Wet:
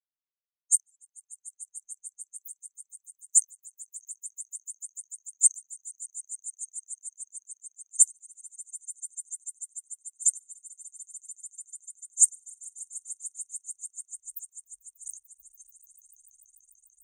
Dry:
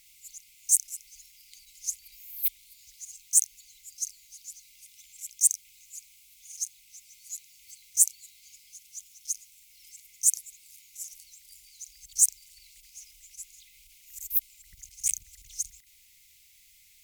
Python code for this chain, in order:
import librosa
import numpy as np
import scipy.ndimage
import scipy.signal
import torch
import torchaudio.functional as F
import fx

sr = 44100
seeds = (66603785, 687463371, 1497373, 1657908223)

y = fx.env_lowpass(x, sr, base_hz=1100.0, full_db=-23.5)
y = fx.echo_swell(y, sr, ms=147, loudest=8, wet_db=-8.0)
y = fx.spectral_expand(y, sr, expansion=2.5)